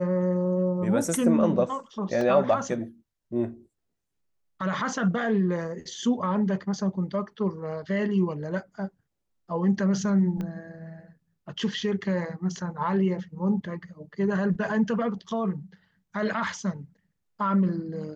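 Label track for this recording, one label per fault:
2.210000	2.210000	gap 2.2 ms
10.410000	10.410000	pop -22 dBFS

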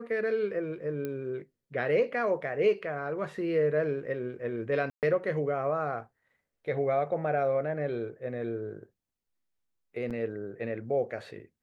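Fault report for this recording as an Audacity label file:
1.050000	1.050000	pop -22 dBFS
4.900000	5.030000	gap 0.128 s
10.100000	10.110000	gap 6.9 ms

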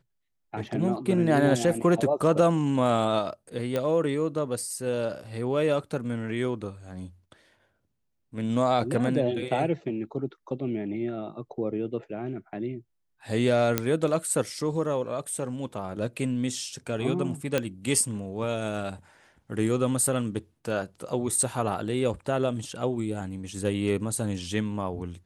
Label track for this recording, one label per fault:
3.760000	3.760000	pop -15 dBFS
13.780000	13.780000	pop -7 dBFS
17.580000	17.580000	pop -11 dBFS

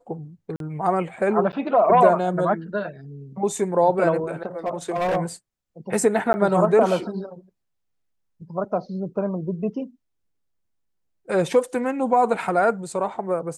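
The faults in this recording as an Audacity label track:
0.560000	0.600000	gap 42 ms
1.520000	1.530000	gap 8.9 ms
4.460000	5.170000	clipped -19.5 dBFS
6.330000	6.340000	gap 10 ms

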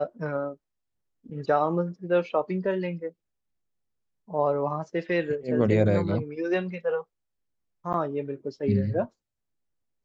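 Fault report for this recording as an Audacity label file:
7.930000	7.940000	gap 9.1 ms

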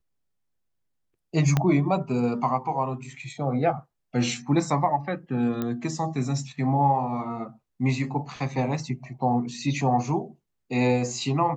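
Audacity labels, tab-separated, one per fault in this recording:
1.570000	1.570000	pop -9 dBFS
5.620000	5.620000	pop -16 dBFS

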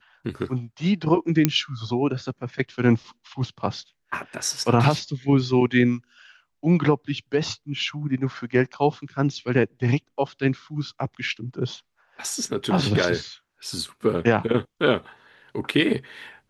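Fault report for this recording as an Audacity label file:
1.450000	1.450000	pop -3 dBFS

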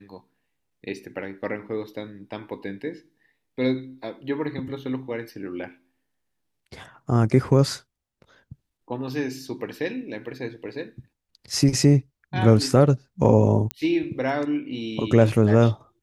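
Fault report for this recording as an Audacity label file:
13.710000	13.710000	pop -11 dBFS

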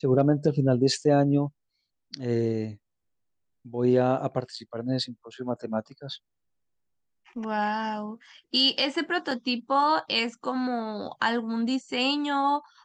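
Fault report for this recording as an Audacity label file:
9.310000	9.310000	gap 3.9 ms

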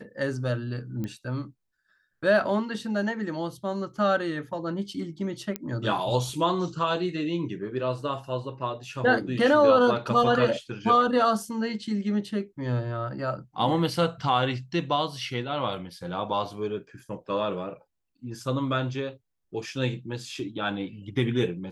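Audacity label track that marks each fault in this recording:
1.040000	1.040000	pop -21 dBFS
5.560000	5.560000	pop -14 dBFS

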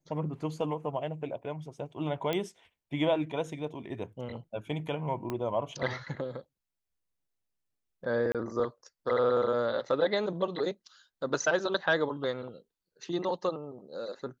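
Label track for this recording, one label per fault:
2.330000	2.330000	pop -17 dBFS
5.300000	5.300000	pop -20 dBFS
8.320000	8.350000	gap 27 ms

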